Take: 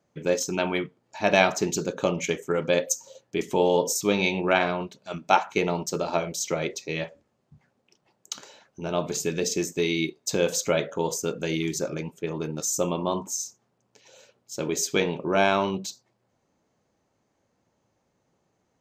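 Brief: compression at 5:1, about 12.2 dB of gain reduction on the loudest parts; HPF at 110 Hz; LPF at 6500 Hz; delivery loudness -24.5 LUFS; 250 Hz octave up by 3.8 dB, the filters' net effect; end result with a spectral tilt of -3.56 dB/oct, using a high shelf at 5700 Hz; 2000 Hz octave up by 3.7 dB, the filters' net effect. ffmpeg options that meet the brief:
-af "highpass=110,lowpass=6.5k,equalizer=f=250:t=o:g=6,equalizer=f=2k:t=o:g=4,highshelf=f=5.7k:g=5.5,acompressor=threshold=-27dB:ratio=5,volume=7.5dB"

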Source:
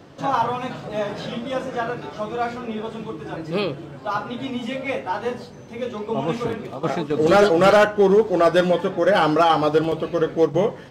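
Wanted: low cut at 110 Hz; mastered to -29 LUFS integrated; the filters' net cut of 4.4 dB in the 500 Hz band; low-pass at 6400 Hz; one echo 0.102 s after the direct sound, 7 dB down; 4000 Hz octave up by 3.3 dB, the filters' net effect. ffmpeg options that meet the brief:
-af "highpass=110,lowpass=6.4k,equalizer=f=500:t=o:g=-5.5,equalizer=f=4k:t=o:g=5,aecho=1:1:102:0.447,volume=-6dB"

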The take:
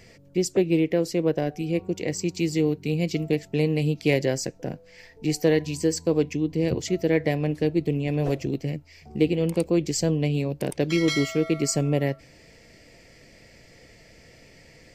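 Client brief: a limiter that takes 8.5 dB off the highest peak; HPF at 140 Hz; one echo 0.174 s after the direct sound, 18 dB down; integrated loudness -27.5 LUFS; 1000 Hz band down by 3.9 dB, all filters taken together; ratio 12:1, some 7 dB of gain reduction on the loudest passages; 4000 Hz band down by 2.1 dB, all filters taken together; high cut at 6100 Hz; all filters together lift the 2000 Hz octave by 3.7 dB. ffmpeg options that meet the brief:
-af "highpass=140,lowpass=6.1k,equalizer=f=1k:t=o:g=-8,equalizer=f=2k:t=o:g=7,equalizer=f=4k:t=o:g=-4,acompressor=threshold=-23dB:ratio=12,alimiter=limit=-22dB:level=0:latency=1,aecho=1:1:174:0.126,volume=5dB"

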